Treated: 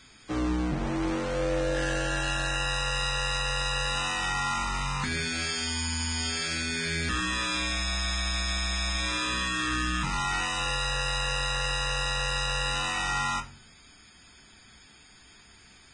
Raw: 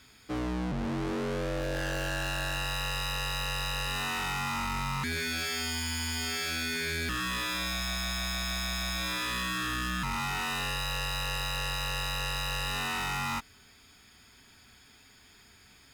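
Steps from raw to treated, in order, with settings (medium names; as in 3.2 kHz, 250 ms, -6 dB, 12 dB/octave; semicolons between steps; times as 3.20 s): reverberation RT60 0.40 s, pre-delay 6 ms, DRR 7 dB; trim +2 dB; Vorbis 16 kbps 22.05 kHz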